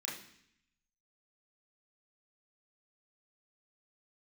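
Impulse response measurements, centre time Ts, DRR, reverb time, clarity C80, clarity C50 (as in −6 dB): 38 ms, −4.5 dB, 0.65 s, 9.5 dB, 5.5 dB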